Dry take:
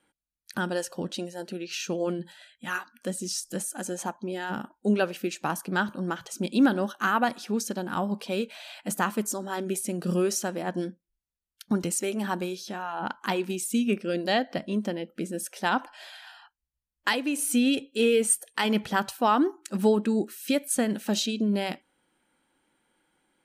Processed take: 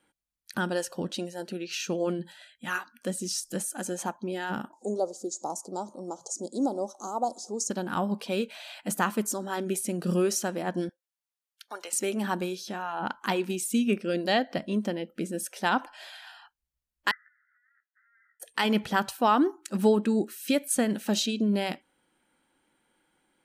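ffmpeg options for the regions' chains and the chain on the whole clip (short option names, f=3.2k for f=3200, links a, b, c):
-filter_complex "[0:a]asettb=1/sr,asplit=3[a][b][c];[a]atrim=end=4.734[d];[b]atrim=start=4.73:end=7.7,asetpts=PTS-STARTPTS,afade=t=in:d=0.004:c=qsin,afade=t=out:st=2.966:d=0.004:c=qsin,acompressor=mode=upward:threshold=-33dB:ratio=2.5:attack=3.2:release=140:knee=2.83:detection=peak,asuperstop=centerf=2100:order=8:qfactor=0.5,highpass=400,equalizer=f=1.3k:t=q:w=4:g=7,equalizer=f=3k:t=q:w=4:g=4,equalizer=f=7k:t=q:w=4:g=9,lowpass=f=9.2k:w=0.5412,lowpass=f=9.2k:w=1.3066[e];[c]atrim=start=7.696[f];[d][e]acrossfade=d=0.004:c1=hsin:c2=qsin[g];[g][f]acrossfade=d=0.004:c1=qsin:c2=hsin,asettb=1/sr,asplit=3[h][i][j];[h]atrim=end=10.894[k];[i]atrim=start=10.89:end=11.93,asetpts=PTS-STARTPTS,afade=t=in:d=0.004:c=qsin,afade=t=out:st=1.036:d=0.004:c=qsin,highpass=f=590:w=0.5412,highpass=f=590:w=1.3066,acrossover=split=5200[l][m];[m]acompressor=threshold=-49dB:ratio=4:attack=1:release=60[n];[l][n]amix=inputs=2:normalize=0[o];[j]atrim=start=11.926[p];[k][o]acrossfade=d=0.004:c1=hsin:c2=qsin[q];[q][p]acrossfade=d=0.004:c1=qsin:c2=hsin,asettb=1/sr,asplit=3[r][s][t];[r]atrim=end=17.114[u];[s]atrim=start=17.11:end=18.4,asetpts=PTS-STARTPTS,afade=t=in:d=0.004:c=qsin,afade=t=out:st=1.286:d=0.004:c=qsin,acompressor=threshold=-33dB:ratio=10:attack=3.2:release=140:knee=1:detection=peak,asuperpass=centerf=1600:order=20:qfactor=2.1,asplit=2[v][w];[w]adelay=15,volume=-2.5dB[x];[v][x]amix=inputs=2:normalize=0,atrim=end_sample=56889[y];[t]atrim=start=18.396[z];[u][y]acrossfade=d=0.004:c1=hsin:c2=qsin[aa];[aa][z]acrossfade=d=0.004:c1=qsin:c2=hsin"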